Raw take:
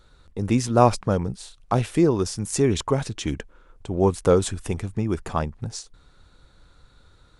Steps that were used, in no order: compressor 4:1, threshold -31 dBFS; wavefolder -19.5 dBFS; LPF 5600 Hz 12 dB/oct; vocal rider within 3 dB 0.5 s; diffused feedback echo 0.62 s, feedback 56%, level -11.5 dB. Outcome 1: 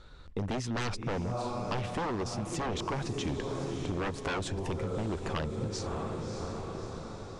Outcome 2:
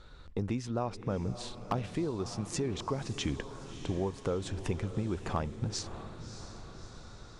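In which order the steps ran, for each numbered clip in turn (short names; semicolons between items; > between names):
diffused feedback echo > wavefolder > vocal rider > compressor > LPF; LPF > compressor > vocal rider > diffused feedback echo > wavefolder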